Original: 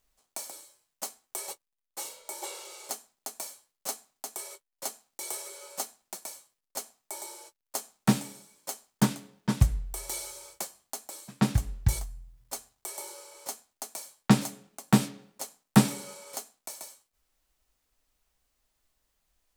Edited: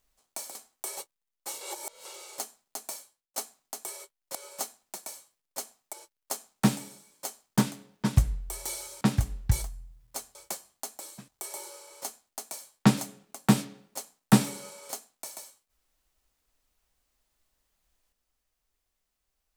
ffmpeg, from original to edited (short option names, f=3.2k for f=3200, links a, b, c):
-filter_complex "[0:a]asplit=10[a][b][c][d][e][f][g][h][i][j];[a]atrim=end=0.552[k];[b]atrim=start=1.058:end=2.122[l];[c]atrim=start=2.118:end=2.562,asetpts=PTS-STARTPTS,areverse[m];[d]atrim=start=2.558:end=3.87,asetpts=PTS-STARTPTS,afade=t=out:st=0.892:d=0.42[n];[e]atrim=start=3.87:end=4.862,asetpts=PTS-STARTPTS,afade=t=in:d=0.004:c=hsin[o];[f]atrim=start=5.538:end=7.122[p];[g]atrim=start=7.368:end=10.452[q];[h]atrim=start=11.378:end=12.722[r];[i]atrim=start=10.448:end=11.382[s];[j]atrim=start=12.718[t];[k][l]acrossfade=d=0.004:c1=hsin:c2=hsin[u];[u][m]acrossfade=d=0.004:c1=hsin:c2=hsin[v];[n][o]concat=n=2:v=0:a=1[w];[v][w]acrossfade=d=0.004:c1=hsin:c2=hsin[x];[x][p]acrossfade=d=0.004:c1=hsin:c2=hsin[y];[y][q]acrossfade=d=0.004:c1=hsin:c2=hsin[z];[z][r]acrossfade=d=0.004:c1=hsin:c2=hsin[aa];[aa][s]acrossfade=d=0.004:c1=hsin:c2=hsin[ab];[ab][t]acrossfade=d=0.004:c1=hsin:c2=hsin"